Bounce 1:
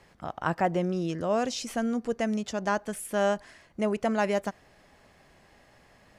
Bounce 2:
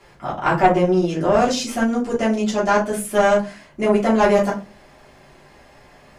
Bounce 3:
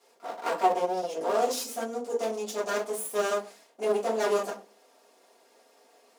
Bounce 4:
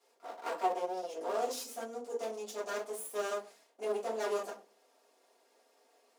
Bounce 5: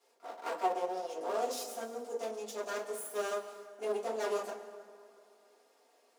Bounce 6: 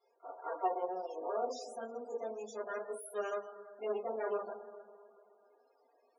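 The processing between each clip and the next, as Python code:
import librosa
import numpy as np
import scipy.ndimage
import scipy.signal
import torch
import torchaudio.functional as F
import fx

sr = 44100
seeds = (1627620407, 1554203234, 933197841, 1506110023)

y1 = fx.low_shelf(x, sr, hz=86.0, db=-7.5)
y1 = fx.room_shoebox(y1, sr, seeds[0], volume_m3=120.0, walls='furnished', distance_m=3.1)
y1 = fx.tube_stage(y1, sr, drive_db=10.0, bias=0.6)
y1 = y1 * librosa.db_to_amplitude(5.5)
y2 = fx.lower_of_two(y1, sr, delay_ms=4.3)
y2 = scipy.signal.sosfilt(scipy.signal.butter(4, 380.0, 'highpass', fs=sr, output='sos'), y2)
y2 = fx.peak_eq(y2, sr, hz=1800.0, db=-14.0, octaves=2.3)
y2 = y2 * librosa.db_to_amplitude(-2.0)
y3 = scipy.signal.sosfilt(scipy.signal.butter(4, 230.0, 'highpass', fs=sr, output='sos'), y2)
y3 = y3 * librosa.db_to_amplitude(-8.0)
y4 = fx.rev_plate(y3, sr, seeds[1], rt60_s=2.5, hf_ratio=0.55, predelay_ms=110, drr_db=12.0)
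y5 = fx.spec_topn(y4, sr, count=32)
y5 = y5 * librosa.db_to_amplitude(-2.0)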